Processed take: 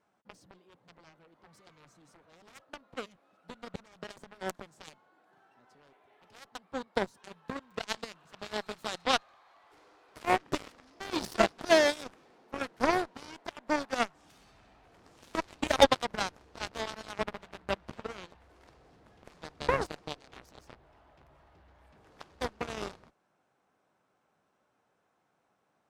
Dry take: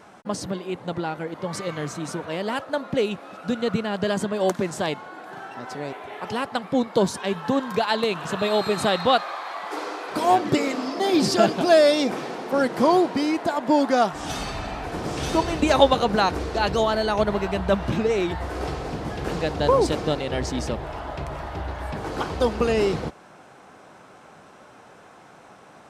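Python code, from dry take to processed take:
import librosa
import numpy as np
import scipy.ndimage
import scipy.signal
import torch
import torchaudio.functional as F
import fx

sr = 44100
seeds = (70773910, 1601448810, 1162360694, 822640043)

y = fx.cheby_harmonics(x, sr, harmonics=(5, 7), levels_db=(-43, -16), full_scale_db=-1.0)
y = F.gain(torch.from_numpy(y), -4.0).numpy()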